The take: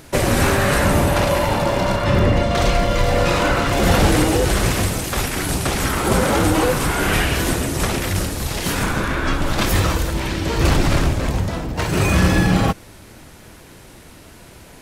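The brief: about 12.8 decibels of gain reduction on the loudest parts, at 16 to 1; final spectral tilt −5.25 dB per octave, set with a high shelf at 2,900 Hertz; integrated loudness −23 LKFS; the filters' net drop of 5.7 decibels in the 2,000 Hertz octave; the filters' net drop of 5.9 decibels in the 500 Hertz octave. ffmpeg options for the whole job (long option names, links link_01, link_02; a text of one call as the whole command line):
ffmpeg -i in.wav -af "equalizer=frequency=500:width_type=o:gain=-7,equalizer=frequency=2000:width_type=o:gain=-5,highshelf=frequency=2900:gain=-5.5,acompressor=threshold=-25dB:ratio=16,volume=7.5dB" out.wav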